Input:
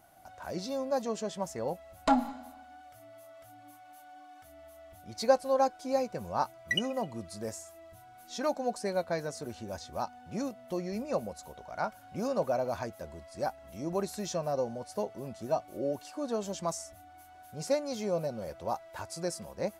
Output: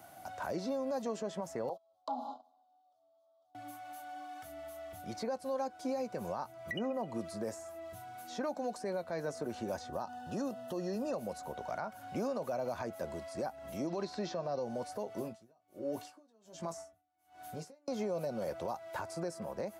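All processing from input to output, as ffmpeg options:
ffmpeg -i in.wav -filter_complex "[0:a]asettb=1/sr,asplit=3[link_01][link_02][link_03];[link_01]atrim=end=1.694[link_04];[link_02]atrim=start=1.69:end=3.55,asetpts=PTS-STARTPTS,afade=type=in:duration=0.004:curve=qsin,afade=type=out:start_time=1.856:duration=0.004:curve=qsin,agate=range=-23dB:threshold=-44dB:ratio=16:release=100:detection=peak,asuperstop=centerf=2000:order=8:qfactor=0.86,acrossover=split=390 4700:gain=0.0708 1 0.0708[link_05][link_06][link_07];[link_05][link_06][link_07]amix=inputs=3:normalize=0[link_08];[link_03]atrim=start=3.546[link_09];[link_04][link_08]acrossfade=duration=0.004:curve1=hsin:curve2=qsin[link_10];[link_10][link_09]acrossfade=duration=0.004:curve1=qsin:curve2=hsin,asettb=1/sr,asplit=3[link_11][link_12][link_13];[link_11]atrim=end=9.894[link_14];[link_12]atrim=start=9.89:end=11.14,asetpts=PTS-STARTPTS,afade=type=in:duration=0.004:curve=qsin,afade=type=out:start_time=1.246:duration=0.004:curve=qsin,acompressor=threshold=-37dB:ratio=4:attack=3.2:release=140:knee=1:detection=peak,asuperstop=centerf=2200:order=8:qfactor=4.3[link_15];[link_13]atrim=start=11.136[link_16];[link_14][link_15]acrossfade=duration=0.004:curve1=hsin:curve2=qsin[link_17];[link_17][link_16]acrossfade=duration=0.004:curve1=qsin:curve2=hsin,asettb=1/sr,asplit=3[link_18][link_19][link_20];[link_18]atrim=end=13.874[link_21];[link_19]atrim=start=13.87:end=14.63,asetpts=PTS-STARTPTS,afade=type=in:duration=0.004:curve=qsin,afade=type=out:start_time=0.756:duration=0.004:curve=qsin,lowpass=frequency=4600:width_type=q:width=2.6,bandreject=frequency=336.4:width_type=h:width=4,bandreject=frequency=672.8:width_type=h:width=4,bandreject=frequency=1009.2:width_type=h:width=4,bandreject=frequency=1345.6:width_type=h:width=4,bandreject=frequency=1682:width_type=h:width=4,bandreject=frequency=2018.4:width_type=h:width=4,bandreject=frequency=2354.8:width_type=h:width=4,bandreject=frequency=2691.2:width_type=h:width=4,bandreject=frequency=3027.6:width_type=h:width=4,bandreject=frequency=3364:width_type=h:width=4,bandreject=frequency=3700.4:width_type=h:width=4,bandreject=frequency=4036.8:width_type=h:width=4,bandreject=frequency=4373.2:width_type=h:width=4,bandreject=frequency=4709.6:width_type=h:width=4,bandreject=frequency=5046:width_type=h:width=4,bandreject=frequency=5382.4:width_type=h:width=4,bandreject=frequency=5718.8:width_type=h:width=4,bandreject=frequency=6055.2:width_type=h:width=4,bandreject=frequency=6391.6:width_type=h:width=4,bandreject=frequency=6728:width_type=h:width=4,bandreject=frequency=7064.4:width_type=h:width=4,bandreject=frequency=7400.8:width_type=h:width=4,bandreject=frequency=7737.2:width_type=h:width=4,bandreject=frequency=8073.6:width_type=h:width=4,bandreject=frequency=8410:width_type=h:width=4,bandreject=frequency=8746.4:width_type=h:width=4,bandreject=frequency=9082.8:width_type=h:width=4[link_22];[link_20]atrim=start=14.626[link_23];[link_21][link_22]acrossfade=duration=0.004:curve1=hsin:curve2=qsin[link_24];[link_24][link_23]acrossfade=duration=0.004:curve1=qsin:curve2=hsin,asettb=1/sr,asplit=3[link_25][link_26][link_27];[link_25]atrim=end=15.184[link_28];[link_26]atrim=start=15.18:end=17.88,asetpts=PTS-STARTPTS,afade=type=in:duration=0.004:curve=qsin,afade=type=out:start_time=2.696:duration=0.004:curve=qsin,acompressor=threshold=-35dB:ratio=10:attack=3.2:release=140:knee=1:detection=peak,asplit=2[link_29][link_30];[link_30]adelay=18,volume=-7.5dB[link_31];[link_29][link_31]amix=inputs=2:normalize=0,atrim=end_sample=119070,aeval=exprs='val(0)*pow(10,-36*(0.5-0.5*cos(2*PI*1.3*n/s))/20)':channel_layout=same[link_32];[link_27]atrim=start=17.876[link_33];[link_28][link_32]acrossfade=duration=0.004:curve1=hsin:curve2=qsin[link_34];[link_34][link_33]acrossfade=duration=0.004:curve1=qsin:curve2=hsin,highpass=97,acrossover=split=210|1900[link_35][link_36][link_37];[link_35]acompressor=threshold=-55dB:ratio=4[link_38];[link_36]acompressor=threshold=-37dB:ratio=4[link_39];[link_37]acompressor=threshold=-59dB:ratio=4[link_40];[link_38][link_39][link_40]amix=inputs=3:normalize=0,alimiter=level_in=10dB:limit=-24dB:level=0:latency=1:release=71,volume=-10dB,volume=6dB" out.wav

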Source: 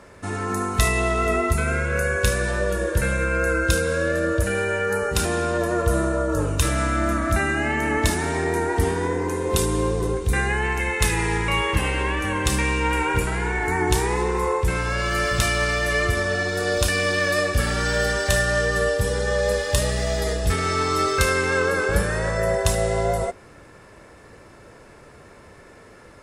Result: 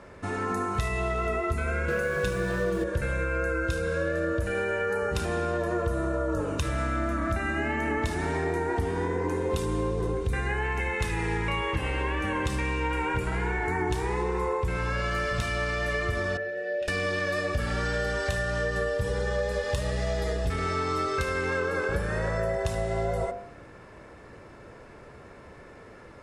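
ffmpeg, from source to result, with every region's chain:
ffmpeg -i in.wav -filter_complex "[0:a]asettb=1/sr,asplit=3[link_01][link_02][link_03];[link_01]atrim=end=1.884[link_04];[link_02]atrim=start=1.88:end=2.84,asetpts=PTS-STARTPTS,afade=type=in:duration=0.004:curve=qsin,afade=type=out:start_time=0.956:duration=0.004:curve=qsin,aecho=1:1:6.1:0.71,atrim=end_sample=42336,acrusher=bits=4:mix=0:aa=0.5,equalizer=frequency=270:width=0.85:gain=7[link_05];[link_03]atrim=start=2.836[link_06];[link_04][link_05]acrossfade=duration=0.004:curve1=hsin:curve2=qsin[link_07];[link_07][link_06]acrossfade=duration=0.004:curve1=qsin:curve2=hsin,asettb=1/sr,asplit=3[link_08][link_09][link_10];[link_08]atrim=end=16.374[link_11];[link_09]atrim=start=16.37:end=16.88,asetpts=PTS-STARTPTS,afade=type=in:duration=0.004:curve=qsin,afade=type=out:start_time=0.506:duration=0.004:curve=qsin,asplit=3[link_12][link_13][link_14];[link_12]bandpass=frequency=530:width_type=q:width=8,volume=0dB[link_15];[link_13]bandpass=frequency=1840:width_type=q:width=8,volume=-6dB[link_16];[link_14]bandpass=frequency=2480:width_type=q:width=8,volume=-9dB[link_17];[link_15][link_16][link_17]amix=inputs=3:normalize=0,aecho=1:1:5.3:0.51,atrim=end_sample=22491[link_18];[link_10]atrim=start=16.876[link_19];[link_11][link_18]acrossfade=duration=0.004:curve1=hsin:curve2=qsin[link_20];[link_20][link_19]acrossfade=duration=0.004:curve1=qsin:curve2=hsin,bandreject=frequency=49.64:width_type=h:width=4,bandreject=frequency=99.28:width_type=h:width=4,bandreject=frequency=148.92:width_type=h:width=4,bandreject=frequency=198.56:width_type=h:width=4,bandreject=frequency=248.2:width_type=h:width=4,bandreject=frequency=297.84:width_type=h:width=4,bandreject=frequency=347.48:width_type=h:width=4,bandreject=frequency=397.12:width_type=h:width=4,bandreject=frequency=446.76:width_type=h:width=4,bandreject=frequency=496.4:width_type=h:width=4,bandreject=frequency=546.04:width_type=h:width=4,bandreject=frequency=595.68:width_type=h:width=4,bandreject=frequency=645.32:width_type=h:width=4,bandreject=frequency=694.96:width_type=h:width=4,bandreject=frequency=744.6:width_type=h:width=4,bandreject=frequency=794.24:width_type=h:width=4,bandreject=frequency=843.88:width_type=h:width=4,bandreject=frequency=893.52:width_type=h:width=4,bandreject=frequency=943.16:width_type=h:width=4,bandreject=frequency=992.8:width_type=h:width=4,bandreject=frequency=1042.44:width_type=h:width=4,bandreject=frequency=1092.08:width_type=h:width=4,bandreject=frequency=1141.72:width_type=h:width=4,bandreject=frequency=1191.36:width_type=h:width=4,bandreject=frequency=1241:width_type=h:width=4,bandreject=frequency=1290.64:width_type=h:width=4,bandreject=frequency=1340.28:width_type=h:width=4,bandreject=frequency=1389.92:width_type=h:width=4,bandreject=frequency=1439.56:width_type=h:width=4,bandreject=frequency=1489.2:width_type=h:width=4,bandreject=frequency=1538.84:width_type=h:width=4,bandreject=frequency=1588.48:width_type=h:width=4,bandreject=frequency=1638.12:width_type=h:width=4,bandreject=frequency=1687.76:width_type=h:width=4,bandreject=frequency=1737.4:width_type=h:width=4,bandreject=frequency=1787.04:width_type=h:width=4,bandreject=frequency=1836.68:width_type=h:width=4,bandreject=frequency=1886.32:width_type=h:width=4,bandreject=frequency=1935.96:width_type=h:width=4,bandreject=frequency=1985.6:width_type=h:width=4,acompressor=threshold=-24dB:ratio=6,lowpass=frequency=2700:poles=1" out.wav

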